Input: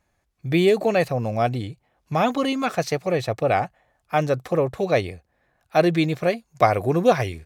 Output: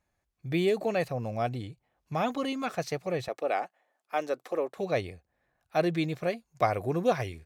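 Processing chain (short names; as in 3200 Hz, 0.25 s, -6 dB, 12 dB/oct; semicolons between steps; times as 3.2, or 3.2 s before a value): 3.28–4.77 HPF 280 Hz 24 dB/oct; gain -8.5 dB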